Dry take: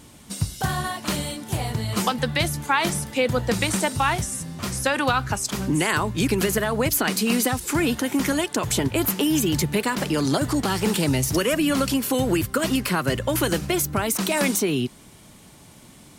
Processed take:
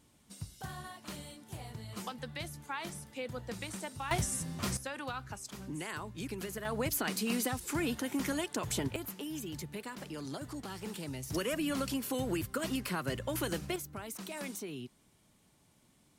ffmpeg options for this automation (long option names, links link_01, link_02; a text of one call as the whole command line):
ffmpeg -i in.wav -af "asetnsamples=nb_out_samples=441:pad=0,asendcmd='4.11 volume volume -6dB;4.77 volume volume -18.5dB;6.65 volume volume -11.5dB;8.96 volume volume -19.5dB;11.3 volume volume -12.5dB;13.76 volume volume -19.5dB',volume=-18.5dB" out.wav